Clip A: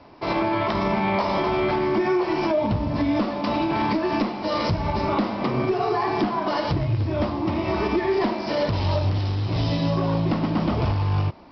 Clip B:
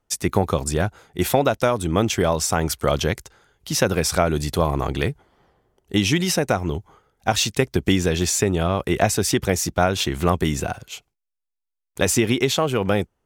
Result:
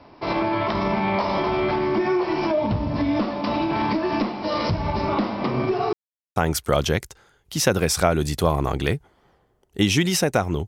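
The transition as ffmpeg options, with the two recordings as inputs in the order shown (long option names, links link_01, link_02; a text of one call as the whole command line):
ffmpeg -i cue0.wav -i cue1.wav -filter_complex "[0:a]apad=whole_dur=10.67,atrim=end=10.67,asplit=2[link_01][link_02];[link_01]atrim=end=5.93,asetpts=PTS-STARTPTS,afade=type=out:start_time=5.926:duration=0.004:curve=hsin[link_03];[link_02]atrim=start=5.93:end=6.36,asetpts=PTS-STARTPTS,volume=0[link_04];[1:a]atrim=start=2.51:end=6.82,asetpts=PTS-STARTPTS,afade=type=in:duration=0.004:curve=hsin[link_05];[link_03][link_04][link_05]concat=n=3:v=0:a=1" out.wav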